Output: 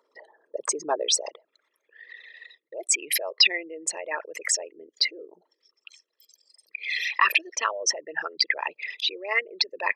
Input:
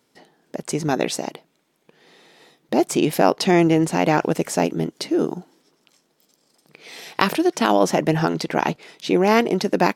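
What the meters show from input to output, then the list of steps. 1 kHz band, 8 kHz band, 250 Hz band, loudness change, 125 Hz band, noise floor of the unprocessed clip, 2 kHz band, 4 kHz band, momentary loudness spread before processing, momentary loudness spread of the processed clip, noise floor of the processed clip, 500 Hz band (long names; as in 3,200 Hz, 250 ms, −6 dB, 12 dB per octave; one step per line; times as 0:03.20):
−9.0 dB, +5.0 dB, −26.5 dB, −5.0 dB, below −40 dB, −67 dBFS, +1.0 dB, +5.0 dB, 12 LU, 18 LU, −79 dBFS, −13.5 dB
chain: spectral envelope exaggerated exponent 3
notch comb filter 750 Hz
high-pass filter sweep 1,000 Hz → 2,200 Hz, 0:00.53–0:02.54
level +7 dB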